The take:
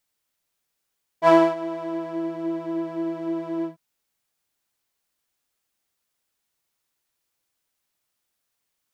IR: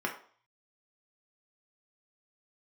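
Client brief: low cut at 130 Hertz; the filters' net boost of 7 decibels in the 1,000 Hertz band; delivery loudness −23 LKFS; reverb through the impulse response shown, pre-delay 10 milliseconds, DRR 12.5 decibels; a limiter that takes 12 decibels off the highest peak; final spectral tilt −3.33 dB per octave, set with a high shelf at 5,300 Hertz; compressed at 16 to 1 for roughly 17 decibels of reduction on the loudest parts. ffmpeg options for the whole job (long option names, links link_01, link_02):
-filter_complex "[0:a]highpass=130,equalizer=frequency=1000:width_type=o:gain=7.5,highshelf=frequency=5300:gain=8.5,acompressor=threshold=-23dB:ratio=16,alimiter=level_in=2.5dB:limit=-24dB:level=0:latency=1,volume=-2.5dB,asplit=2[link_01][link_02];[1:a]atrim=start_sample=2205,adelay=10[link_03];[link_02][link_03]afir=irnorm=-1:irlink=0,volume=-19dB[link_04];[link_01][link_04]amix=inputs=2:normalize=0,volume=12.5dB"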